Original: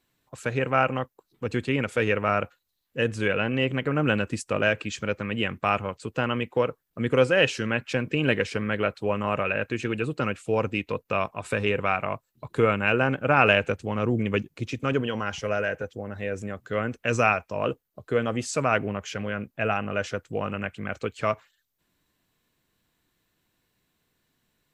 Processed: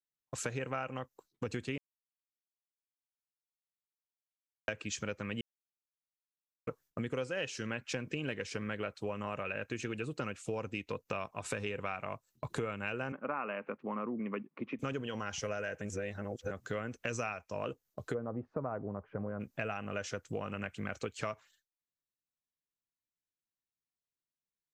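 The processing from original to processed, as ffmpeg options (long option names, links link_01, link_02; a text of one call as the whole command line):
ffmpeg -i in.wav -filter_complex "[0:a]asettb=1/sr,asplit=3[link_01][link_02][link_03];[link_01]atrim=end=13.124[link_04];[link_02]atrim=start=13.12:end=14.79,asetpts=PTS-STARTPTS,afade=type=in:duration=0.004:curve=qsin,afade=type=out:start_time=1.666:duration=0.004:curve=qsin,highpass=frequency=210:width=0.5412,highpass=frequency=210:width=1.3066,equalizer=frequency=220:width_type=q:width=4:gain=3,equalizer=frequency=330:width_type=q:width=4:gain=-4,equalizer=frequency=470:width_type=q:width=4:gain=-4,equalizer=frequency=710:width_type=q:width=4:gain=-4,equalizer=frequency=1100:width_type=q:width=4:gain=7,equalizer=frequency=1600:width_type=q:width=4:gain=-6,lowpass=frequency=2000:width=0.5412,lowpass=frequency=2000:width=1.3066[link_05];[link_03]atrim=start=14.786[link_06];[link_04][link_05]acrossfade=duration=0.004:curve1=hsin:curve2=qsin[link_07];[link_07][link_06]acrossfade=duration=0.004:curve1=qsin:curve2=hsin,asplit=3[link_08][link_09][link_10];[link_08]afade=type=out:start_time=18.13:duration=0.02[link_11];[link_09]lowpass=frequency=1100:width=0.5412,lowpass=frequency=1100:width=1.3066,afade=type=in:start_time=18.13:duration=0.02,afade=type=out:start_time=19.39:duration=0.02[link_12];[link_10]afade=type=in:start_time=19.39:duration=0.02[link_13];[link_11][link_12][link_13]amix=inputs=3:normalize=0,asplit=7[link_14][link_15][link_16][link_17][link_18][link_19][link_20];[link_14]atrim=end=1.78,asetpts=PTS-STARTPTS,afade=type=out:start_time=1.776:duration=0.004:curve=hsin[link_21];[link_15]atrim=start=1.78:end=4.68,asetpts=PTS-STARTPTS,volume=0[link_22];[link_16]atrim=start=4.68:end=5.41,asetpts=PTS-STARTPTS,afade=type=in:duration=0.004:curve=hsin,afade=type=out:start_time=0.726:duration=0.004:curve=hsin[link_23];[link_17]atrim=start=5.41:end=6.67,asetpts=PTS-STARTPTS,volume=0[link_24];[link_18]atrim=start=6.67:end=15.812,asetpts=PTS-STARTPTS,afade=type=in:duration=0.004:curve=hsin[link_25];[link_19]atrim=start=15.808:end=16.512,asetpts=PTS-STARTPTS,areverse[link_26];[link_20]atrim=start=16.508[link_27];[link_21][link_22][link_23][link_24][link_25]concat=n=5:v=0:a=1[link_28];[link_28][link_26]acrossfade=duration=0.004:curve1=hsin:curve2=hsin[link_29];[link_29][link_27]acrossfade=duration=0.004:curve1=hsin:curve2=hsin,agate=range=-33dB:threshold=-50dB:ratio=3:detection=peak,equalizer=frequency=6200:width_type=o:width=0.79:gain=8,acompressor=threshold=-36dB:ratio=6,volume=1dB" out.wav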